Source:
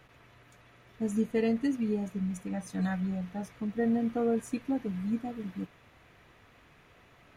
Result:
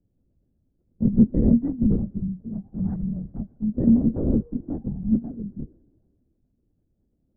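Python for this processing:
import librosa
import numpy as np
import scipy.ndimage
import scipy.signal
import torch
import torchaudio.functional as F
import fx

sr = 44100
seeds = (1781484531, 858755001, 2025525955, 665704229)

y = fx.wiener(x, sr, points=41)
y = scipy.ndimage.gaussian_filter1d(y, 7.5, mode='constant')
y = fx.low_shelf(y, sr, hz=290.0, db=11.0)
y = fx.comb_fb(y, sr, f0_hz=160.0, decay_s=1.4, harmonics='all', damping=0.0, mix_pct=70)
y = fx.small_body(y, sr, hz=(220.0, 330.0), ring_ms=95, db=10)
y = fx.lpc_vocoder(y, sr, seeds[0], excitation='whisper', order=10)
y = fx.band_widen(y, sr, depth_pct=40)
y = y * librosa.db_to_amplitude(5.5)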